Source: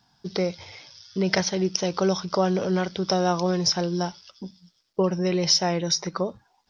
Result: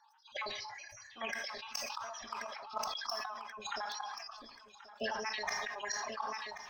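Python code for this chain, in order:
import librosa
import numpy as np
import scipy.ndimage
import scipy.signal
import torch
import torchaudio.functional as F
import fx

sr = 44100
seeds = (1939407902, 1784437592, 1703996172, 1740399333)

y = fx.spec_dropout(x, sr, seeds[0], share_pct=57)
y = scipy.signal.sosfilt(scipy.signal.cheby2(4, 40, 430.0, 'highpass', fs=sr, output='sos'), y)
y = fx.tilt_eq(y, sr, slope=-4.5)
y = fx.gate_flip(y, sr, shuts_db=-30.0, range_db=-27)
y = np.clip(10.0 ** (31.0 / 20.0) * y, -1.0, 1.0) / 10.0 ** (31.0 / 20.0)
y = fx.pitch_keep_formants(y, sr, semitones=3.0)
y = fx.echo_feedback(y, sr, ms=1082, feedback_pct=39, wet_db=-16.0)
y = fx.rev_plate(y, sr, seeds[1], rt60_s=0.62, hf_ratio=0.8, predelay_ms=0, drr_db=12.0)
y = fx.sustainer(y, sr, db_per_s=28.0)
y = y * 10.0 ** (6.5 / 20.0)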